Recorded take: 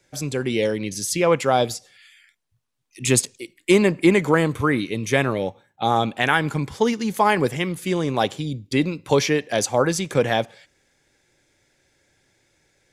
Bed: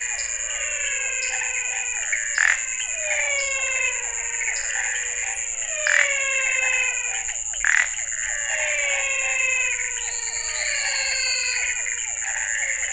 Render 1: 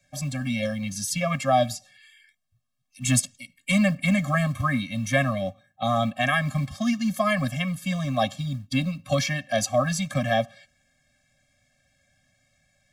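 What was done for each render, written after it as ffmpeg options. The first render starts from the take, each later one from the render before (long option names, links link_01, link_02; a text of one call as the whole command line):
ffmpeg -i in.wav -filter_complex "[0:a]acrossover=split=200|1300|4100[link_01][link_02][link_03][link_04];[link_01]acrusher=bits=5:mode=log:mix=0:aa=0.000001[link_05];[link_05][link_02][link_03][link_04]amix=inputs=4:normalize=0,afftfilt=real='re*eq(mod(floor(b*sr/1024/260),2),0)':imag='im*eq(mod(floor(b*sr/1024/260),2),0)':win_size=1024:overlap=0.75" out.wav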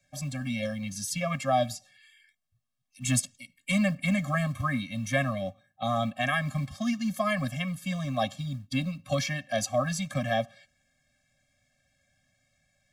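ffmpeg -i in.wav -af "volume=-4.5dB" out.wav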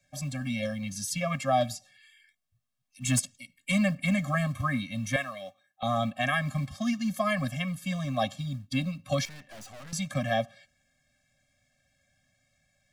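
ffmpeg -i in.wav -filter_complex "[0:a]asettb=1/sr,asplit=3[link_01][link_02][link_03];[link_01]atrim=end=1.604[link_04];[link_02]atrim=start=1.6:end=3.19,asetpts=PTS-STARTPTS,afade=type=in:duration=0.004:curve=qsin,afade=type=out:start_time=1.586:duration=0.004:curve=qsin,aeval=exprs='clip(val(0),-1,0.1)':channel_layout=same[link_05];[link_03]atrim=start=3.186[link_06];[link_04][link_05]acrossfade=duration=0.004:curve1=hsin:curve2=qsin[link_07];[link_07][link_06]acrossfade=duration=0.004:curve1=qsin:curve2=hsin,asettb=1/sr,asplit=3[link_08][link_09][link_10];[link_08]atrim=end=5.164[link_11];[link_09]atrim=start=5.16:end=5.83,asetpts=PTS-STARTPTS,afade=type=in:duration=0.004:curve=qsin,afade=type=out:start_time=0.666:duration=0.004:curve=qsin,highpass=frequency=1200:poles=1[link_12];[link_10]atrim=start=5.826[link_13];[link_11][link_12]acrossfade=duration=0.004:curve1=hsin:curve2=qsin[link_14];[link_14][link_13]acrossfade=duration=0.004:curve1=qsin:curve2=hsin,asettb=1/sr,asplit=3[link_15][link_16][link_17];[link_15]atrim=end=9.254[link_18];[link_16]atrim=start=9.25:end=9.93,asetpts=PTS-STARTPTS,afade=type=in:duration=0.004:curve=qsin,afade=type=out:start_time=0.676:duration=0.004:curve=qsin,aeval=exprs='(tanh(178*val(0)+0.65)-tanh(0.65))/178':channel_layout=same[link_19];[link_17]atrim=start=9.926[link_20];[link_18][link_19]acrossfade=duration=0.004:curve1=hsin:curve2=qsin[link_21];[link_21][link_20]acrossfade=duration=0.004:curve1=qsin:curve2=hsin" out.wav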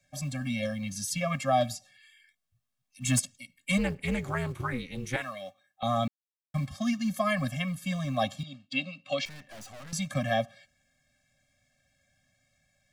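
ffmpeg -i in.wav -filter_complex "[0:a]asplit=3[link_01][link_02][link_03];[link_01]afade=type=out:start_time=3.77:duration=0.02[link_04];[link_02]tremolo=f=250:d=0.889,afade=type=in:start_time=3.77:duration=0.02,afade=type=out:start_time=5.21:duration=0.02[link_05];[link_03]afade=type=in:start_time=5.21:duration=0.02[link_06];[link_04][link_05][link_06]amix=inputs=3:normalize=0,asettb=1/sr,asplit=3[link_07][link_08][link_09];[link_07]atrim=end=8.434[link_10];[link_08]atrim=start=8.43:end=9.26,asetpts=PTS-STARTPTS,afade=type=in:duration=0.004:curve=qsin,afade=type=out:start_time=0.826:duration=0.004:curve=qsin,highpass=330,equalizer=frequency=990:width_type=q:width=4:gain=-9,equalizer=frequency=1600:width_type=q:width=4:gain=-6,equalizer=frequency=2800:width_type=q:width=4:gain=8,equalizer=frequency=5900:width_type=q:width=4:gain=-8,lowpass=frequency=6500:width=0.5412,lowpass=frequency=6500:width=1.3066[link_11];[link_09]atrim=start=9.256[link_12];[link_10][link_11]acrossfade=duration=0.004:curve1=hsin:curve2=qsin[link_13];[link_13][link_12]acrossfade=duration=0.004:curve1=qsin:curve2=hsin,asplit=3[link_14][link_15][link_16];[link_14]atrim=end=6.08,asetpts=PTS-STARTPTS,afade=type=out:start_time=6.076:duration=0.004:curve=hsin[link_17];[link_15]atrim=start=6.08:end=6.54,asetpts=PTS-STARTPTS,volume=0[link_18];[link_16]atrim=start=6.54,asetpts=PTS-STARTPTS,afade=type=in:duration=0.004:curve=hsin[link_19];[link_17][link_18][link_19]concat=n=3:v=0:a=1" out.wav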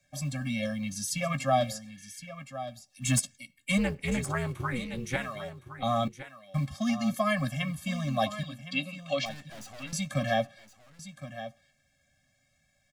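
ffmpeg -i in.wav -filter_complex "[0:a]asplit=2[link_01][link_02];[link_02]adelay=14,volume=-13.5dB[link_03];[link_01][link_03]amix=inputs=2:normalize=0,aecho=1:1:1065:0.237" out.wav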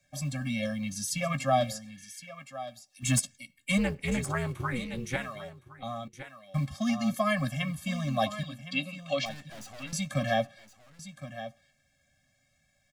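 ffmpeg -i in.wav -filter_complex "[0:a]asettb=1/sr,asplit=3[link_01][link_02][link_03];[link_01]atrim=end=2.044[link_04];[link_02]atrim=start=2.04:end=3.03,asetpts=PTS-STARTPTS,afade=type=in:duration=0.004:curve=qsin,afade=type=out:start_time=0.986:duration=0.004:curve=qsin,lowshelf=frequency=260:gain=-9.5[link_05];[link_03]atrim=start=3.026[link_06];[link_04][link_05]acrossfade=duration=0.004:curve1=hsin:curve2=qsin[link_07];[link_07][link_06]acrossfade=duration=0.004:curve1=qsin:curve2=hsin,asplit=2[link_08][link_09];[link_08]atrim=end=6.13,asetpts=PTS-STARTPTS,afade=type=out:start_time=5.01:duration=1.12:silence=0.188365[link_10];[link_09]atrim=start=6.13,asetpts=PTS-STARTPTS,afade=type=in:duration=0.004:curve=hsin:silence=0.188365[link_11];[link_10][link_11]concat=n=2:v=0:a=1" out.wav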